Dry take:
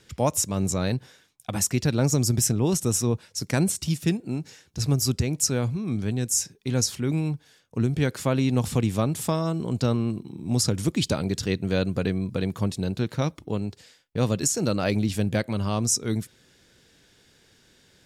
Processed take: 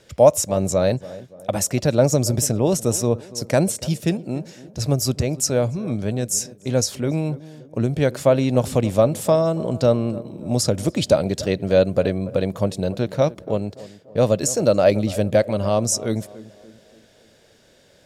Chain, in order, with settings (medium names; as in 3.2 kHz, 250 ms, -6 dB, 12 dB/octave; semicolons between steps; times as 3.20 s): peaking EQ 590 Hz +14.5 dB 0.59 oct; on a send: tape echo 287 ms, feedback 53%, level -16 dB, low-pass 1.1 kHz; on the sum: trim +1.5 dB